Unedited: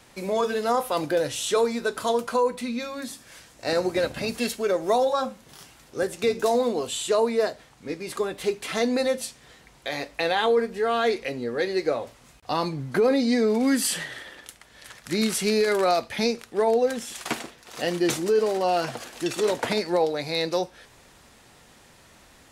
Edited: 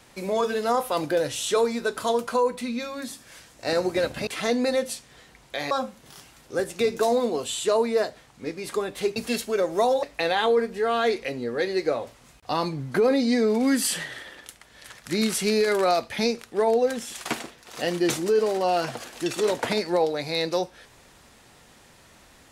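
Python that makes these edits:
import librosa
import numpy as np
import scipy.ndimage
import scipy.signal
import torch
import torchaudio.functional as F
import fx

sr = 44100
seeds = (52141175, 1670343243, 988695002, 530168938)

y = fx.edit(x, sr, fx.swap(start_s=4.27, length_s=0.87, other_s=8.59, other_length_s=1.44), tone=tone)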